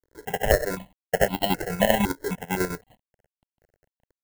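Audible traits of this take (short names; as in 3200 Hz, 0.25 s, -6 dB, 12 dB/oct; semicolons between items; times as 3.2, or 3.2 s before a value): a quantiser's noise floor 10-bit, dither none; chopped level 10 Hz, depth 60%, duty 50%; aliases and images of a low sample rate 1200 Hz, jitter 0%; notches that jump at a steady rate 3.9 Hz 750–1700 Hz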